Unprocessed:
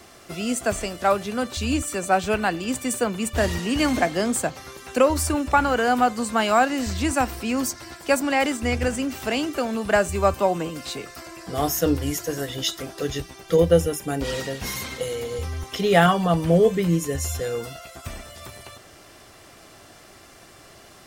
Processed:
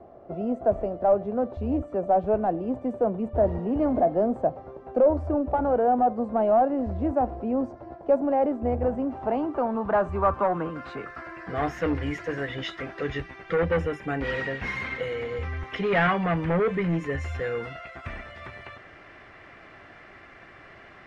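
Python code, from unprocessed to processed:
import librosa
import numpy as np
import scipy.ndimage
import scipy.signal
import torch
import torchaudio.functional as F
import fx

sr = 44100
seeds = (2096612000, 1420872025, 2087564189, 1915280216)

y = 10.0 ** (-18.0 / 20.0) * np.tanh(x / 10.0 ** (-18.0 / 20.0))
y = fx.filter_sweep_lowpass(y, sr, from_hz=650.0, to_hz=2000.0, start_s=8.6, end_s=11.83, q=2.6)
y = F.gain(torch.from_numpy(y), -2.0).numpy()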